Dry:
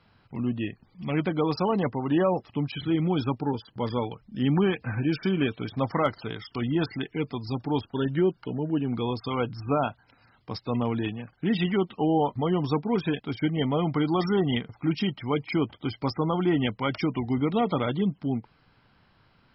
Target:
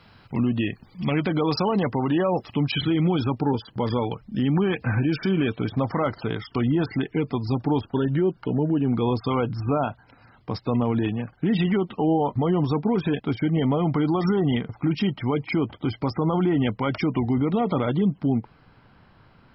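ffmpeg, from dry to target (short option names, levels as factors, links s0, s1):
-af "asetnsamples=n=441:p=0,asendcmd='3.19 highshelf g -3.5;5.52 highshelf g -10',highshelf=f=2500:g=3.5,alimiter=limit=0.0708:level=0:latency=1:release=72,volume=2.66"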